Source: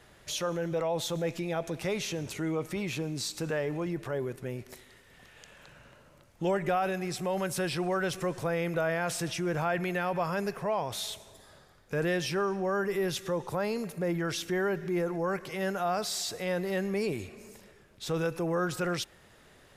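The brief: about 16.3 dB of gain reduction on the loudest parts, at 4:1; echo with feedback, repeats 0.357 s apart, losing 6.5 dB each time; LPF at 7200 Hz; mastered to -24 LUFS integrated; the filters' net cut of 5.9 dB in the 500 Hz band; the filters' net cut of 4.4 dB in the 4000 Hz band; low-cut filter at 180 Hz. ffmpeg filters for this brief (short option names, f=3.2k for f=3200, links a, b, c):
-af "highpass=180,lowpass=7.2k,equalizer=f=500:t=o:g=-7.5,equalizer=f=4k:t=o:g=-5,acompressor=threshold=-49dB:ratio=4,aecho=1:1:357|714|1071|1428|1785|2142:0.473|0.222|0.105|0.0491|0.0231|0.0109,volume=25dB"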